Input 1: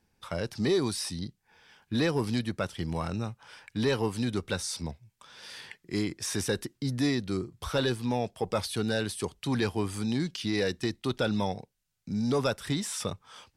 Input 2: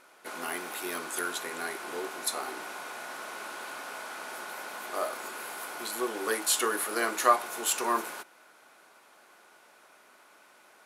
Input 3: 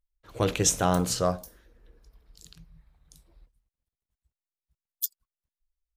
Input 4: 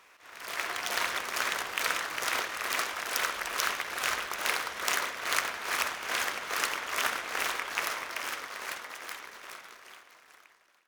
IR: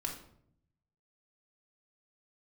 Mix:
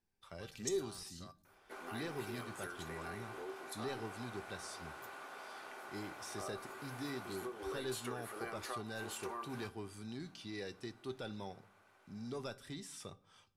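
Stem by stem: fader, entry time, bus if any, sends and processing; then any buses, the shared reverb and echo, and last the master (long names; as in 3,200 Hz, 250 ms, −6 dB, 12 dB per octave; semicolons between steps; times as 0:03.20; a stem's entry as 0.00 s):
−9.0 dB, 0.00 s, no bus, send −13.5 dB, no processing
0.0 dB, 1.45 s, bus A, no send, no processing
−5.5 dB, 0.00 s, no bus, no send, guitar amp tone stack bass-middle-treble 10-0-10; output level in coarse steps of 21 dB
muted
bus A: 0.0 dB, high-shelf EQ 3,400 Hz −10 dB; downward compressor, threshold −34 dBFS, peak gain reduction 16.5 dB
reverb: on, RT60 0.70 s, pre-delay 3 ms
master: tuned comb filter 390 Hz, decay 0.16 s, harmonics all, mix 70%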